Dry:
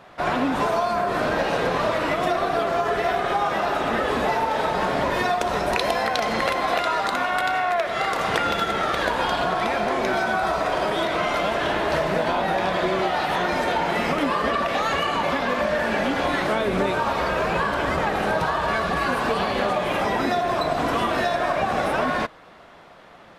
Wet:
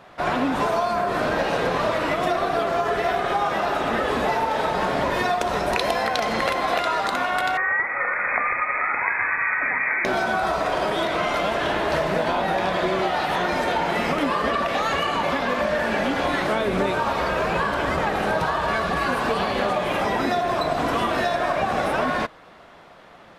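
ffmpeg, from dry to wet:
-filter_complex "[0:a]asettb=1/sr,asplit=3[a][b][c];[a]atrim=end=7.574[d];[b]atrim=start=7.57:end=10.05,asetpts=PTS-STARTPTS,afade=t=in:d=0.004:c=qsin,afade=t=out:st=2.476:d=0.004:c=qsin,lowpass=f=2.2k:t=q:w=0.5098,lowpass=f=2.2k:t=q:w=0.6013,lowpass=f=2.2k:t=q:w=0.9,lowpass=f=2.2k:t=q:w=2.563,afreqshift=-2600[e];[c]atrim=start=10.046[f];[d][e]acrossfade=d=0.004:c1=hsin:c2=qsin[g];[g][f]acrossfade=d=0.004:c1=qsin:c2=hsin"

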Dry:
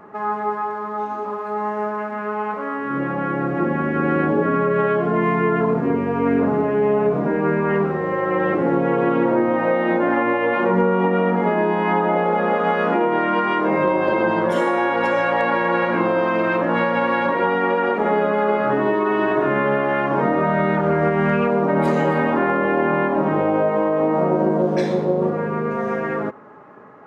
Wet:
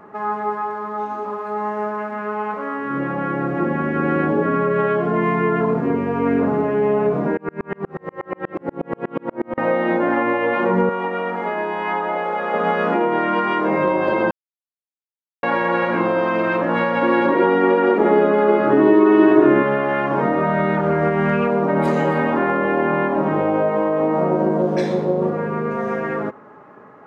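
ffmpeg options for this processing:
-filter_complex "[0:a]asettb=1/sr,asplit=3[a][b][c];[a]atrim=end=7.374[d];[b]atrim=start=7.37:end=9.58,asetpts=PTS-STARTPTS,afade=t=in:d=0.004:c=qsin,afade=t=out:st=2.206:d=0.004:c=qsin,aeval=exprs='val(0)*pow(10,-38*if(lt(mod(-8.3*n/s,1),2*abs(-8.3)/1000),1-mod(-8.3*n/s,1)/(2*abs(-8.3)/1000),(mod(-8.3*n/s,1)-2*abs(-8.3)/1000)/(1-2*abs(-8.3)/1000))/20)':c=same[e];[c]atrim=start=9.576[f];[d][e]acrossfade=d=0.004:c1=hsin:c2=qsin[g];[g][f]acrossfade=d=0.004:c1=qsin:c2=hsin,asettb=1/sr,asplit=3[h][i][j];[h]atrim=end=10.894[k];[i]atrim=start=10.89:end=12.54,asetpts=PTS-STARTPTS,afade=t=in:d=0.004:c=qsin,afade=t=out:st=1.646:d=0.004:c=qsin,highpass=f=750:p=1[l];[j]atrim=start=12.536[m];[k][l]acrossfade=d=0.004:c1=hsin:c2=qsin[n];[n][m]acrossfade=d=0.004:c1=qsin:c2=hsin,asettb=1/sr,asplit=3[o][p][q];[o]atrim=end=17.024[r];[p]atrim=start=17.02:end=19.63,asetpts=PTS-STARTPTS,afade=t=in:d=0.004:c=qsin,afade=t=out:st=2.606:d=0.004:c=qsin,equalizer=f=330:w=2.5:g=13[s];[q]atrim=start=19.626[t];[r][s]acrossfade=d=0.004:c1=hsin:c2=qsin[u];[u][t]acrossfade=d=0.004:c1=qsin:c2=hsin,asplit=3[v][w][x];[v]atrim=end=14.31,asetpts=PTS-STARTPTS,afade=t=out:st=14.306:d=0.004:c=hsin[y];[w]atrim=start=14.31:end=15.43,asetpts=PTS-STARTPTS,volume=0[z];[x]atrim=start=15.43,asetpts=PTS-STARTPTS,afade=t=in:d=0.004:c=hsin[aa];[y][z][aa]concat=n=3:v=0:a=1"

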